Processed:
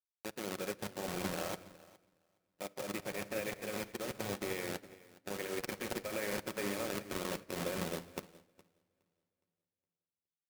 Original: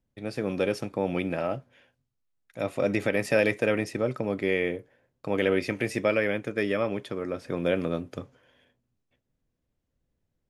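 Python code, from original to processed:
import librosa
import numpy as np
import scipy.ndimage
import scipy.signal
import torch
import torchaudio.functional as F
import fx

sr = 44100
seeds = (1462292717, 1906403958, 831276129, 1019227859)

p1 = fx.delta_hold(x, sr, step_db=-24.0)
p2 = fx.highpass(p1, sr, hz=400.0, slope=6)
p3 = fx.high_shelf(p2, sr, hz=5600.0, db=5.0)
p4 = fx.level_steps(p3, sr, step_db=20)
p5 = p4 + fx.echo_feedback(p4, sr, ms=415, feedback_pct=42, wet_db=-9, dry=0)
p6 = fx.room_shoebox(p5, sr, seeds[0], volume_m3=2100.0, walls='mixed', distance_m=1.0)
p7 = fx.upward_expand(p6, sr, threshold_db=-54.0, expansion=2.5)
y = p7 * 10.0 ** (3.5 / 20.0)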